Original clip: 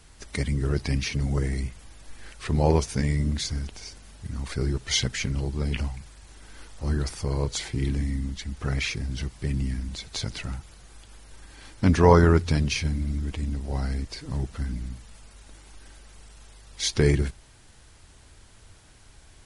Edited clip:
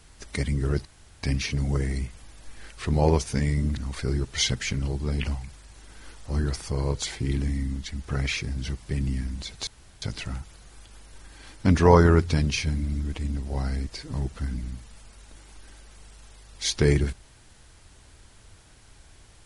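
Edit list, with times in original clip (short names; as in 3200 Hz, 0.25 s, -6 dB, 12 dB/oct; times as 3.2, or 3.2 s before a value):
0.85 insert room tone 0.38 s
3.39–4.3 cut
10.2 insert room tone 0.35 s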